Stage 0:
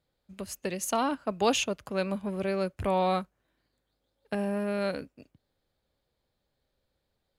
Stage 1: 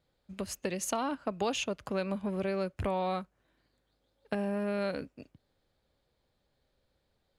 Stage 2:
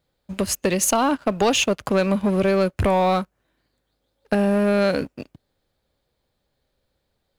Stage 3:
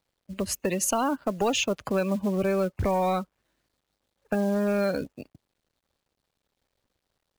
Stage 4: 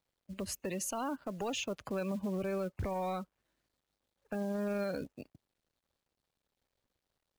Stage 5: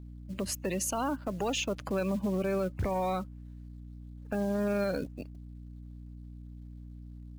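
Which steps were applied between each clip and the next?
high-shelf EQ 11,000 Hz −11 dB; downward compressor 3 to 1, threshold −34 dBFS, peak gain reduction 10.5 dB; level +3 dB
high-shelf EQ 10,000 Hz +6 dB; leveller curve on the samples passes 2; level +6.5 dB
gate on every frequency bin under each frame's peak −25 dB strong; log-companded quantiser 6 bits; level −6 dB
brickwall limiter −22.5 dBFS, peak gain reduction 7.5 dB; level −6.5 dB
mains hum 60 Hz, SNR 11 dB; level +5 dB

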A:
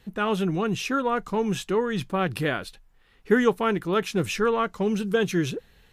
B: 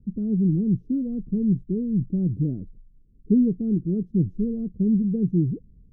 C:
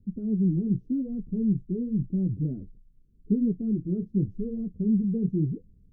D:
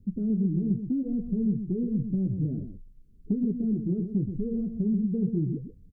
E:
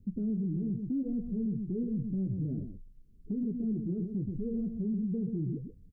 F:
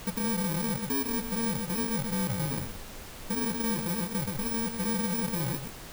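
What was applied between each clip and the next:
inverse Chebyshev low-pass filter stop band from 930 Hz, stop band 60 dB; level +7 dB
flanger 0.87 Hz, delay 9.3 ms, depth 8.1 ms, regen −37%
downward compressor 3 to 1, threshold −29 dBFS, peak gain reduction 8 dB; single-tap delay 126 ms −8.5 dB; level +3.5 dB
brickwall limiter −24 dBFS, peak gain reduction 7 dB; level −2.5 dB
samples in bit-reversed order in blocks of 64 samples; background noise pink −46 dBFS; level +2 dB

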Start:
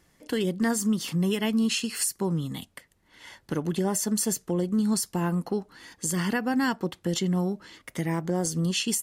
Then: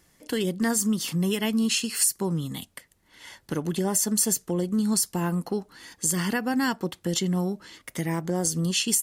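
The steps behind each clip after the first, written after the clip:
high-shelf EQ 4,800 Hz +6.5 dB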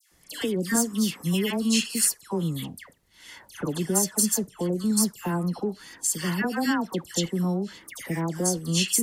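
all-pass dispersion lows, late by 119 ms, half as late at 1,600 Hz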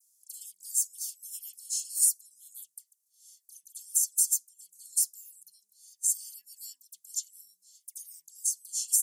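inverse Chebyshev high-pass filter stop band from 1,500 Hz, stop band 70 dB

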